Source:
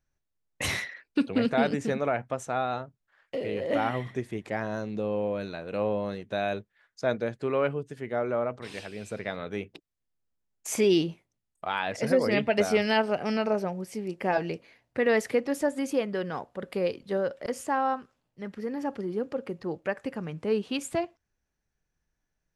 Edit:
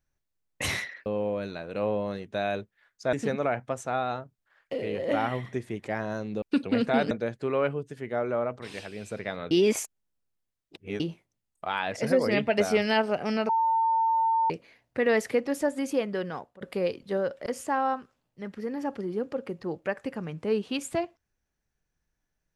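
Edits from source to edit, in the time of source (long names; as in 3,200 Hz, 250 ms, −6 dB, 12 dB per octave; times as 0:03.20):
0:01.06–0:01.75: swap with 0:05.04–0:07.11
0:09.51–0:11.00: reverse
0:13.49–0:14.50: beep over 902 Hz −21 dBFS
0:16.14–0:16.61: fade out equal-power, to −19.5 dB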